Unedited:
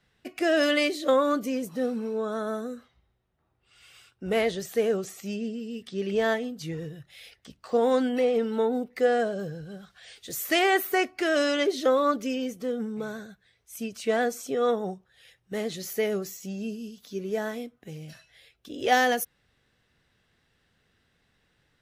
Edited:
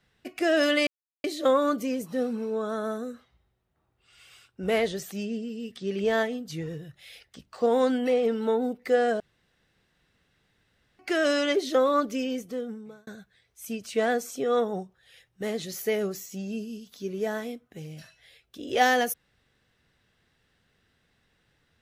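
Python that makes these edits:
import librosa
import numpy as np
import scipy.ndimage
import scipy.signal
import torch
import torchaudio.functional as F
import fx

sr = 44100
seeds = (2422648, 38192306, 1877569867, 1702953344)

y = fx.edit(x, sr, fx.insert_silence(at_s=0.87, length_s=0.37),
    fx.cut(start_s=4.75, length_s=0.48),
    fx.room_tone_fill(start_s=9.31, length_s=1.79),
    fx.fade_out_span(start_s=12.51, length_s=0.67), tone=tone)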